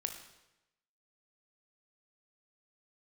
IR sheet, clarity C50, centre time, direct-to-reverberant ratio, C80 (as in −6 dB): 7.5 dB, 21 ms, 5.0 dB, 10.0 dB